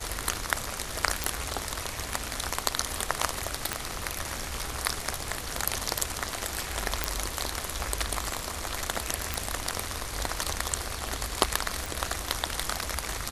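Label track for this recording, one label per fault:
1.240000	1.240000	pop
3.730000	3.730000	pop -10 dBFS
7.040000	7.040000	pop
9.340000	9.340000	pop
11.860000	11.860000	pop

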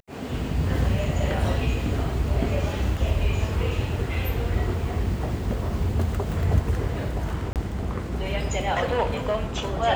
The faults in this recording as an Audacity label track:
7.530000	7.560000	gap 28 ms

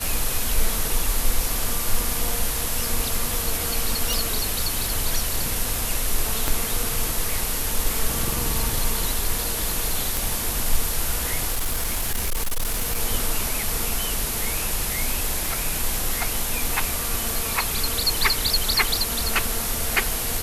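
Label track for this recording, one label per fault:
4.130000	4.130000	pop
6.480000	6.480000	pop -7 dBFS
10.170000	10.170000	pop
11.500000	13.000000	clipped -19.5 dBFS
15.460000	15.460000	pop

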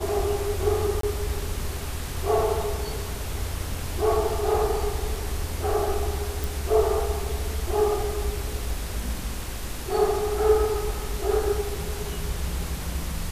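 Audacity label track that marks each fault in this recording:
1.010000	1.030000	gap 23 ms
6.440000	6.440000	pop

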